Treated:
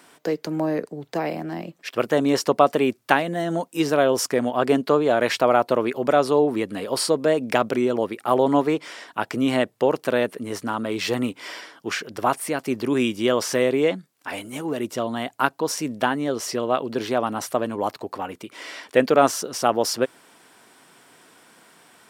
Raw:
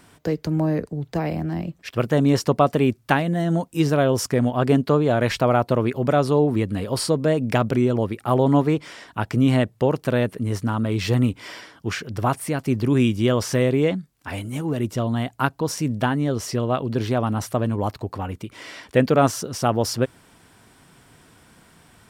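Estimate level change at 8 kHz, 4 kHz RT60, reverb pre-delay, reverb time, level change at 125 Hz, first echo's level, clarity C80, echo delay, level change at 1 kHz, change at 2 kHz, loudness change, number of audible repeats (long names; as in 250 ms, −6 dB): +2.0 dB, no reverb audible, no reverb audible, no reverb audible, −13.0 dB, no echo audible, no reverb audible, no echo audible, +2.0 dB, +2.0 dB, −1.0 dB, no echo audible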